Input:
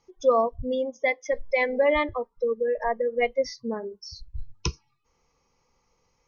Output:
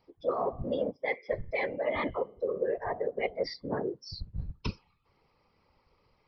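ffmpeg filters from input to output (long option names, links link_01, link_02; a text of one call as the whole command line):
ffmpeg -i in.wav -af "aresample=11025,aresample=44100,areverse,acompressor=threshold=-30dB:ratio=6,areverse,bandreject=frequency=230.8:width_type=h:width=4,bandreject=frequency=461.6:width_type=h:width=4,bandreject=frequency=692.4:width_type=h:width=4,bandreject=frequency=923.2:width_type=h:width=4,bandreject=frequency=1154:width_type=h:width=4,bandreject=frequency=1384.8:width_type=h:width=4,bandreject=frequency=1615.6:width_type=h:width=4,bandreject=frequency=1846.4:width_type=h:width=4,bandreject=frequency=2077.2:width_type=h:width=4,bandreject=frequency=2308:width_type=h:width=4,bandreject=frequency=2538.8:width_type=h:width=4,bandreject=frequency=2769.6:width_type=h:width=4,bandreject=frequency=3000.4:width_type=h:width=4,bandreject=frequency=3231.2:width_type=h:width=4,bandreject=frequency=3462:width_type=h:width=4,afftfilt=real='hypot(re,im)*cos(2*PI*random(0))':imag='hypot(re,im)*sin(2*PI*random(1))':win_size=512:overlap=0.75,volume=7.5dB" out.wav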